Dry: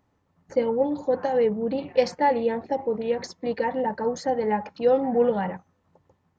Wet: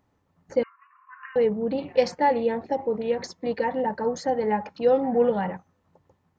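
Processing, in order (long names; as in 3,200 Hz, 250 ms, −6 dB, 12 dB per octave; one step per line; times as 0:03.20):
0:00.63–0:01.36: linear-phase brick-wall band-pass 1,000–2,900 Hz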